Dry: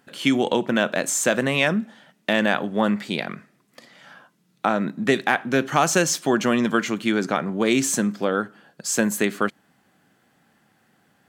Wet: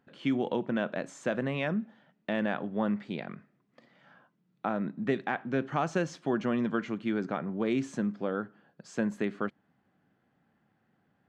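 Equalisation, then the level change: tape spacing loss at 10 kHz 27 dB; low shelf 130 Hz +5.5 dB; -8.5 dB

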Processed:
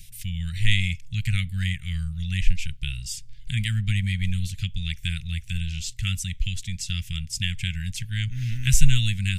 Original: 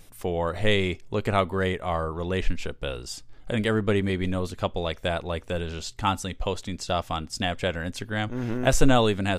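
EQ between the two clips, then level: inverse Chebyshev band-stop 310–1100 Hz, stop band 50 dB; dynamic EQ 4200 Hz, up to -7 dB, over -49 dBFS, Q 1.7; +6.5 dB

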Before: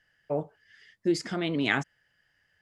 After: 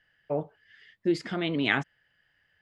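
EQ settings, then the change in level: resonant high shelf 4600 Hz -7.5 dB, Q 1.5; 0.0 dB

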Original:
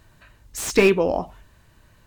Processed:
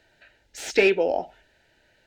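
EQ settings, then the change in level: Butterworth band-stop 1100 Hz, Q 2.1; three-band isolator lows -17 dB, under 330 Hz, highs -16 dB, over 5700 Hz; 0.0 dB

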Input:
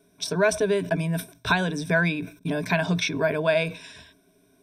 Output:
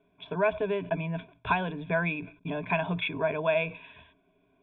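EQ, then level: rippled Chebyshev low-pass 3500 Hz, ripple 9 dB; low shelf 88 Hz +8 dB; 0.0 dB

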